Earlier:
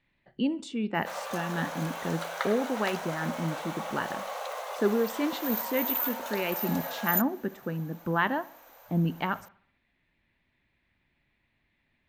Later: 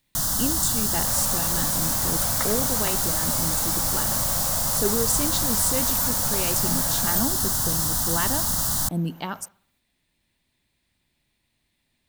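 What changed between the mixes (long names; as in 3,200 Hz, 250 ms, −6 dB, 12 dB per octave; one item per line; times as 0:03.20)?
speech: remove low-pass with resonance 2,100 Hz, resonance Q 1.6
first sound: unmuted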